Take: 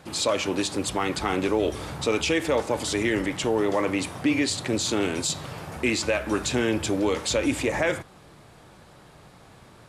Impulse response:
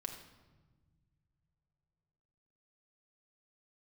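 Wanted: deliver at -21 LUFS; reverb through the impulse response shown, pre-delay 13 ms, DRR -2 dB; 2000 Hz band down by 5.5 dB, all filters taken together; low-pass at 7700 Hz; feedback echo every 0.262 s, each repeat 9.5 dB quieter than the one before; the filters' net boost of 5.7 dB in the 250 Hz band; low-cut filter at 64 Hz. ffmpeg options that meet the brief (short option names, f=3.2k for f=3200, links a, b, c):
-filter_complex "[0:a]highpass=64,lowpass=7.7k,equalizer=f=250:t=o:g=7.5,equalizer=f=2k:t=o:g=-7,aecho=1:1:262|524|786|1048:0.335|0.111|0.0365|0.012,asplit=2[a][b];[1:a]atrim=start_sample=2205,adelay=13[c];[b][c]afir=irnorm=-1:irlink=0,volume=3.5dB[d];[a][d]amix=inputs=2:normalize=0,volume=-3dB"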